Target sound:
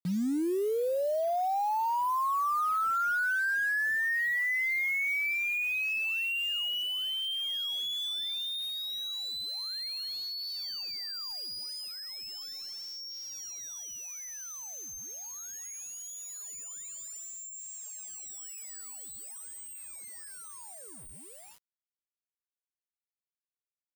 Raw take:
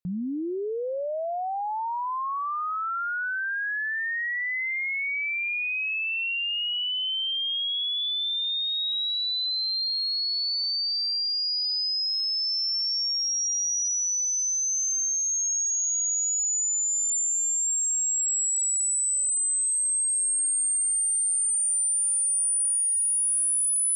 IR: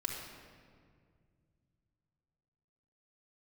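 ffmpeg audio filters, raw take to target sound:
-af "asubboost=boost=3.5:cutoff=230,highpass=160,lowpass=2.3k,acrusher=bits=7:mix=0:aa=0.000001,volume=1.5dB"

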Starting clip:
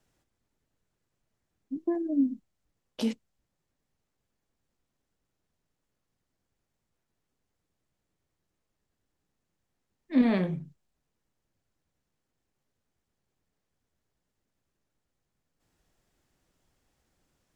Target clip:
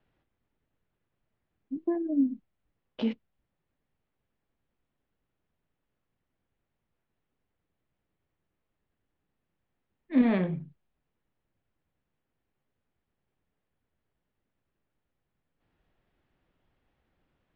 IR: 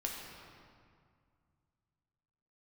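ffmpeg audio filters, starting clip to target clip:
-af "lowpass=f=3.3k:w=0.5412,lowpass=f=3.3k:w=1.3066"

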